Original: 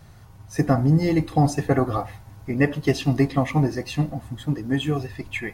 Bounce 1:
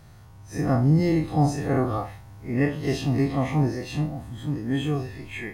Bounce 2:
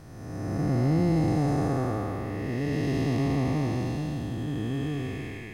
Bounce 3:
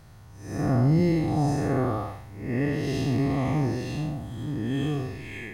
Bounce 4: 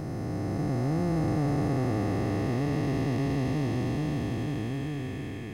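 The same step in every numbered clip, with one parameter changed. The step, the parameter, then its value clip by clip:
time blur, width: 80, 653, 224, 1730 ms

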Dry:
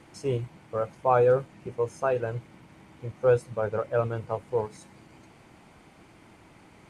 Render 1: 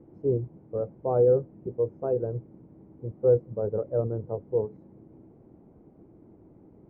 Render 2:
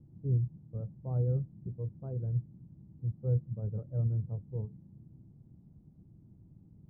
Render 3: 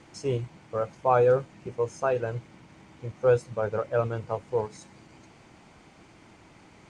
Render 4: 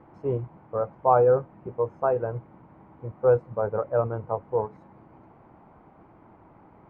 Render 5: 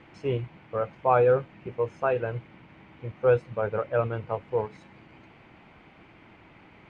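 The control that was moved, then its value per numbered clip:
synth low-pass, frequency: 410, 150, 6800, 1000, 2700 Hz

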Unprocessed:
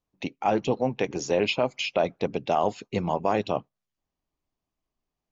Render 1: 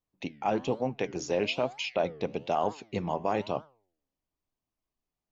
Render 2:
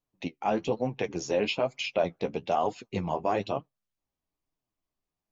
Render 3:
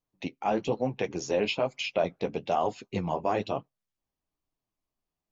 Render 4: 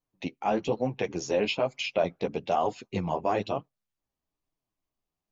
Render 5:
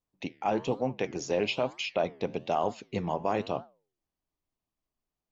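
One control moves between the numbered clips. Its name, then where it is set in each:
flange, regen: +90, +27, -25, -1, -87%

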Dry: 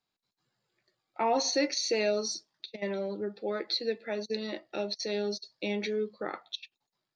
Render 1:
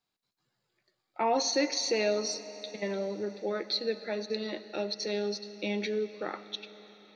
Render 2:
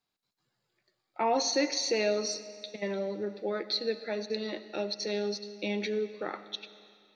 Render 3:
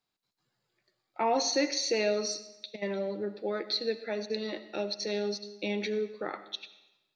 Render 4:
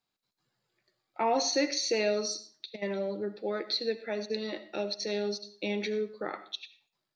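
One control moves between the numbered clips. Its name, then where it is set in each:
digital reverb, RT60: 5, 2.3, 0.95, 0.4 s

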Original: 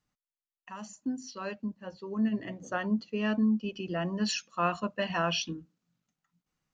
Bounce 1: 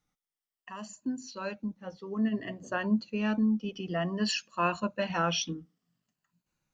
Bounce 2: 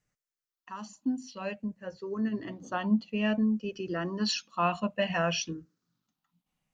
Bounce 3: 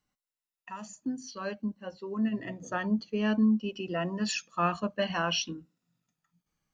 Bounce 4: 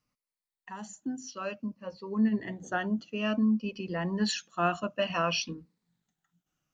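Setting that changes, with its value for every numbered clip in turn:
moving spectral ripple, ripples per octave: 1.4, 0.52, 2.1, 0.92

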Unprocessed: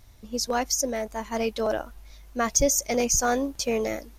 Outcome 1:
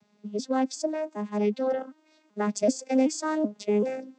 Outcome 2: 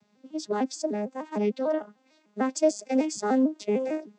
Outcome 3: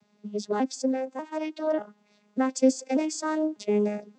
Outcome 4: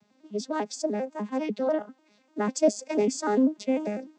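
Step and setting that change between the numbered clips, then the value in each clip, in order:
arpeggiated vocoder, a note every: 382, 150, 592, 99 ms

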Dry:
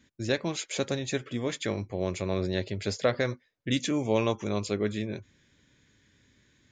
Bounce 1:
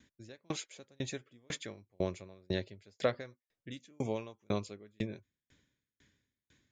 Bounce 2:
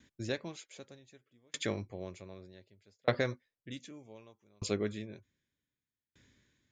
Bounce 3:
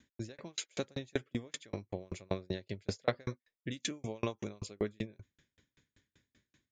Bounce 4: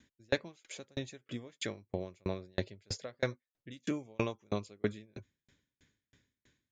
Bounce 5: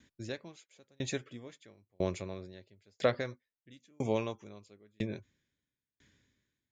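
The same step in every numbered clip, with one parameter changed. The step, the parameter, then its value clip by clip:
dB-ramp tremolo, rate: 2, 0.65, 5.2, 3.1, 1 Hz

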